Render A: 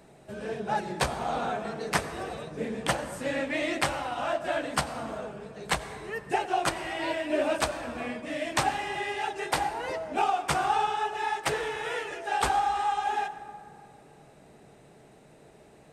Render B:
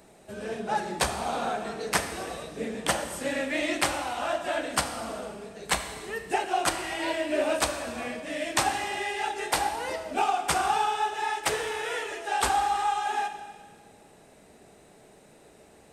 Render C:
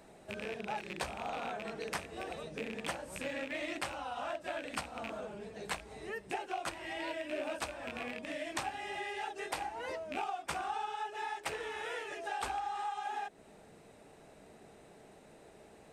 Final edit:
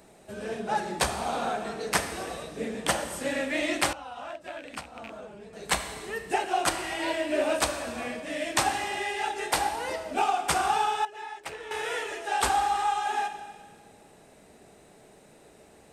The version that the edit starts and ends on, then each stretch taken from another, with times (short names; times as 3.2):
B
3.93–5.53 from C
11.05–11.71 from C
not used: A